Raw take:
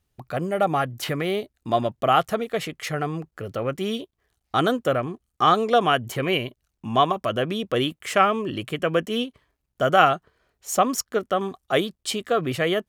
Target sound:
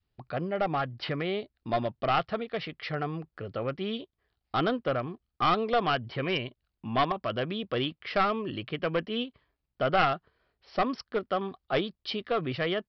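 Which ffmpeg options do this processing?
-af "adynamicequalizer=threshold=0.02:dfrequency=410:dqfactor=0.79:tfrequency=410:tqfactor=0.79:attack=5:release=100:ratio=0.375:range=1.5:mode=cutabove:tftype=bell,aresample=11025,aeval=exprs='clip(val(0),-1,0.126)':c=same,aresample=44100,volume=0.562"

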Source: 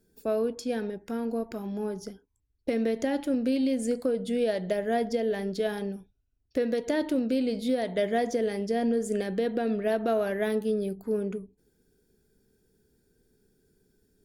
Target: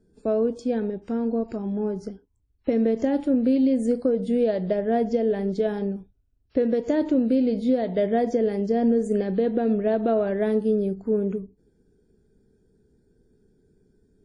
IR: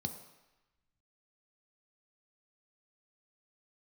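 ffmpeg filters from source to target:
-af "tiltshelf=f=1100:g=7" -ar 22050 -c:a wmav2 -b:a 32k

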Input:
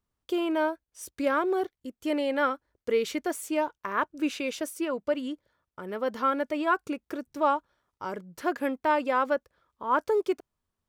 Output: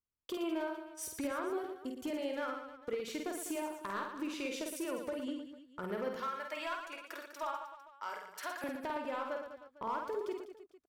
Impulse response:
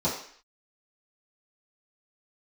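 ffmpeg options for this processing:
-filter_complex "[0:a]agate=range=0.158:threshold=0.00224:ratio=16:detection=peak,asettb=1/sr,asplit=3[s0][s1][s2];[s0]atrim=end=6.164[s3];[s1]atrim=start=6.16:end=8.64,asetpts=PTS-STARTPTS,afade=t=in:d=0.004:c=qsin,afade=t=out:st=2.476:d=0.004:c=qsin,highpass=1000[s4];[s2]atrim=start=8.636[s5];[s3][s4]acrossfade=d=0.004:c1=hsin:c2=qsin[s6];[s6][s5]acrossfade=d=0.004:c1=qsin:c2=hsin,acompressor=threshold=0.0178:ratio=10,asoftclip=type=hard:threshold=0.0266,aecho=1:1:50|115|199.5|309.4|452.2:0.631|0.398|0.251|0.158|0.1,volume=0.891"

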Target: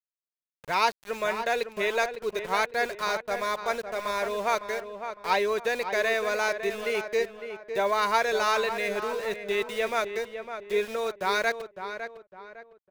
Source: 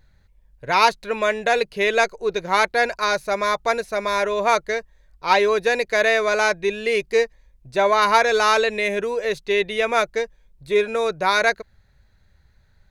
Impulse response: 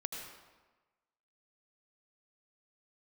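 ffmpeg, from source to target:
-filter_complex "[0:a]aeval=exprs='val(0)*gte(abs(val(0)),0.0316)':c=same,asplit=2[s0][s1];[s1]adelay=556,lowpass=f=2200:p=1,volume=0.376,asplit=2[s2][s3];[s3]adelay=556,lowpass=f=2200:p=1,volume=0.37,asplit=2[s4][s5];[s5]adelay=556,lowpass=f=2200:p=1,volume=0.37,asplit=2[s6][s7];[s7]adelay=556,lowpass=f=2200:p=1,volume=0.37[s8];[s0][s2][s4][s6][s8]amix=inputs=5:normalize=0,volume=0.398"

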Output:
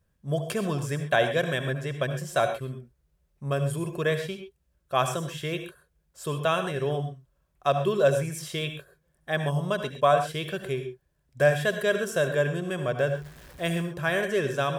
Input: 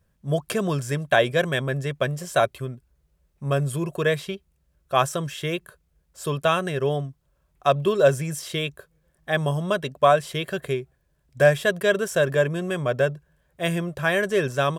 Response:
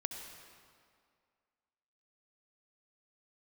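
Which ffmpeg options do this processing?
-filter_complex "[0:a]asettb=1/sr,asplit=3[s0][s1][s2];[s0]atrim=end=13.074[s3];[s1]atrim=start=13.07:end=13.82,asetpts=PTS-STARTPTS,afade=t=in:d=0.004:c=qsin,afade=t=out:st=0.746:d=0.004:c=qsin,aeval=exprs='val(0)+0.5*0.0112*sgn(val(0))':c=same[s4];[s2]atrim=start=13.816[s5];[s3][s4]acrossfade=d=0.004:c1=hsin:c2=qsin[s6];[s6][s5]acrossfade=d=0.004:c1=qsin:c2=hsin[s7];[1:a]atrim=start_sample=2205,atrim=end_sample=6174[s8];[s7][s8]afir=irnorm=-1:irlink=0,volume=0.708"

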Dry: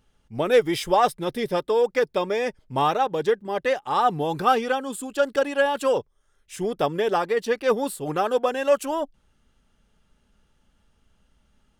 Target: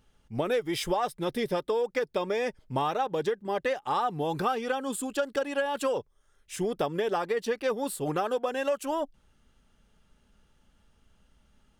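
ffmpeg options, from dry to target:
-af "acompressor=threshold=0.0562:ratio=6"

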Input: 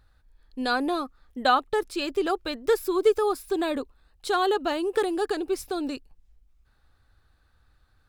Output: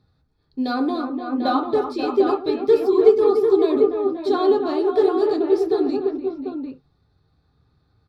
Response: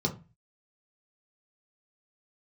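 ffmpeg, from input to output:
-filter_complex "[0:a]highshelf=f=11000:g=-8.5,acrossover=split=3200[s0][s1];[s0]aecho=1:1:107|294|530|545|745:0.211|0.376|0.251|0.335|0.531[s2];[s1]asoftclip=type=tanh:threshold=0.0141[s3];[s2][s3]amix=inputs=2:normalize=0[s4];[1:a]atrim=start_sample=2205,afade=t=out:st=0.13:d=0.01,atrim=end_sample=6174[s5];[s4][s5]afir=irnorm=-1:irlink=0,volume=0.376"

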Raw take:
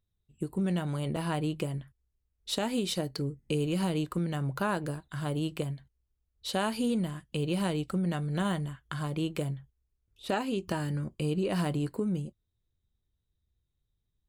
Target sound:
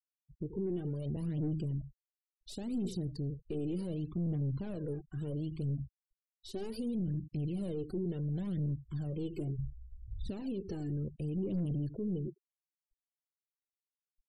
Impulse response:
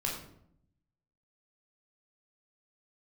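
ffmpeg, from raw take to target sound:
-filter_complex "[0:a]asplit=2[s0][s1];[s1]aecho=0:1:83:0.112[s2];[s0][s2]amix=inputs=2:normalize=0,aphaser=in_gain=1:out_gain=1:delay=2.9:decay=0.67:speed=0.69:type=triangular,aeval=exprs='(tanh(31.6*val(0)+0.3)-tanh(0.3))/31.6':c=same,asplit=3[s3][s4][s5];[s3]afade=t=out:st=9.58:d=0.02[s6];[s4]asubboost=boost=8.5:cutoff=180,afade=t=in:st=9.58:d=0.02,afade=t=out:st=10.28:d=0.02[s7];[s5]afade=t=in:st=10.28:d=0.02[s8];[s6][s7][s8]amix=inputs=3:normalize=0,afftfilt=real='re*gte(hypot(re,im),0.00891)':imag='im*gte(hypot(re,im),0.00891)':win_size=1024:overlap=0.75,alimiter=level_in=2.66:limit=0.0631:level=0:latency=1:release=57,volume=0.376,firequalizer=gain_entry='entry(380,0);entry(920,-23);entry(4700,-10)':delay=0.05:min_phase=1,volume=1.58"

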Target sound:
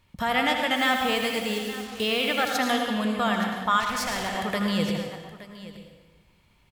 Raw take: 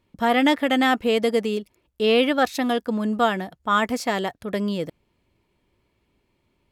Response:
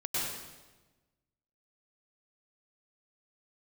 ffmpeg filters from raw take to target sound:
-filter_complex "[0:a]alimiter=limit=0.106:level=0:latency=1:release=456,aecho=1:1:79|871:0.355|0.158,asplit=2[s0][s1];[1:a]atrim=start_sample=2205[s2];[s1][s2]afir=irnorm=-1:irlink=0,volume=0.447[s3];[s0][s3]amix=inputs=2:normalize=0,asettb=1/sr,asplit=3[s4][s5][s6];[s4]atrim=end=0.764[s7];[s5]atrim=start=0.76:end=2.57,asetpts=PTS-STARTPTS,afade=t=in:d=0.004:c=qsin,afade=t=out:st=1.806:d=0.004:c=qsin,acrusher=bits=6:mix=0:aa=0.5[s8];[s6]atrim=start=2.566[s9];[s7][s8]acrossfade=d=0.004:c1=hsin:c2=qsin[s10];[s10][s9]acrossfade=d=0.004:c1=qsin:c2=hsin,asettb=1/sr,asplit=3[s11][s12][s13];[s11]atrim=end=3.804[s14];[s12]atrim=start=3.8:end=4.35,asetpts=PTS-STARTPTS,afade=t=in:d=0.004:c=qsin,afade=t=out:st=0.546:d=0.004:c=qsin,volume=23.7,asoftclip=hard,volume=0.0422[s15];[s13]atrim=start=4.346[s16];[s14][s15]acrossfade=d=0.004:c1=hsin:c2=qsin[s17];[s17][s16]acrossfade=d=0.004:c1=qsin:c2=hsin,equalizer=f=340:w=0.9:g=-13.5,volume=1.88"

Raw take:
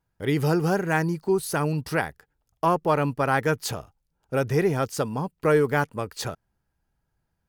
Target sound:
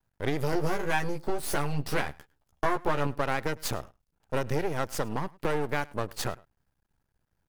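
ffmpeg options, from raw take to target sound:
-filter_complex "[0:a]acompressor=threshold=0.0562:ratio=6,aeval=exprs='max(val(0),0)':c=same,asettb=1/sr,asplit=3[s0][s1][s2];[s0]atrim=end=0.514[s3];[s1]atrim=start=0.51:end=3.07,asetpts=PTS-STARTPTS,afade=t=in:d=0.004:c=qsin,afade=t=out:st=2.556:d=0.004:c=qsin,asplit=2[s4][s5];[s5]adelay=14,volume=0.668[s6];[s4][s6]amix=inputs=2:normalize=0,atrim=end_sample=112896[s7];[s2]atrim=start=3.066[s8];[s3][s7]acrossfade=d=0.004:c1=hsin:c2=qsin[s9];[s9][s8]acrossfade=d=0.004:c1=qsin:c2=hsin,aecho=1:1:104:0.0668,volume=1.41"

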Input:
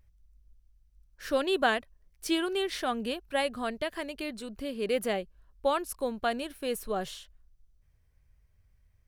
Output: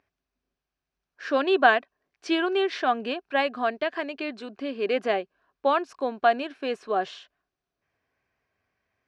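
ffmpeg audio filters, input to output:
-af "highpass=250,equalizer=f=270:t=q:w=4:g=7,equalizer=f=390:t=q:w=4:g=6,equalizer=f=710:t=q:w=4:g=10,equalizer=f=1100:t=q:w=4:g=7,equalizer=f=1600:t=q:w=4:g=8,equalizer=f=2500:t=q:w=4:g=6,lowpass=f=5600:w=0.5412,lowpass=f=5600:w=1.3066"

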